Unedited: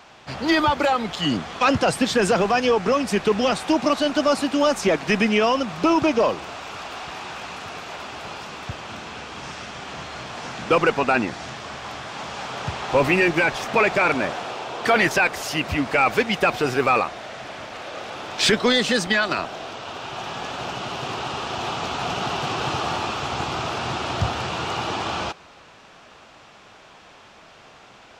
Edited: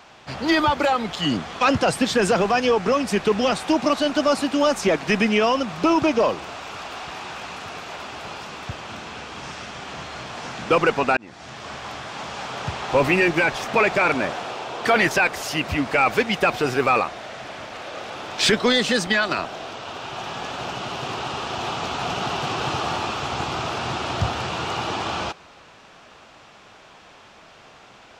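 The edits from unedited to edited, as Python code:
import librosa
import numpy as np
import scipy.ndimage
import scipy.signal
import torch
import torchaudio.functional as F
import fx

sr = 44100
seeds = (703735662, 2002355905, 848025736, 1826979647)

y = fx.edit(x, sr, fx.fade_in_span(start_s=11.17, length_s=0.53), tone=tone)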